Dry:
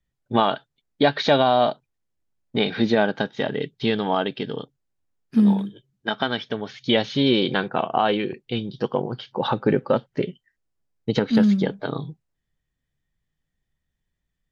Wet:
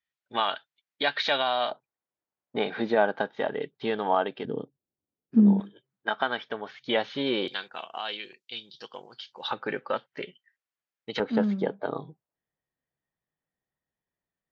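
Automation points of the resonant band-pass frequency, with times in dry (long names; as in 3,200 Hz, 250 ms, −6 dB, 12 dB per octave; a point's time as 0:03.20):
resonant band-pass, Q 0.85
2,400 Hz
from 0:01.71 880 Hz
from 0:04.45 310 Hz
from 0:05.60 1,100 Hz
from 0:07.48 5,500 Hz
from 0:09.51 2,000 Hz
from 0:11.20 720 Hz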